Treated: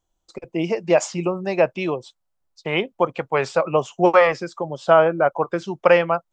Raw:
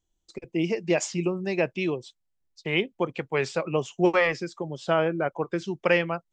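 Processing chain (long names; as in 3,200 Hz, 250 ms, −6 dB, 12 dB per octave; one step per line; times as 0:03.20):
flat-topped bell 860 Hz +8.5 dB
level +2 dB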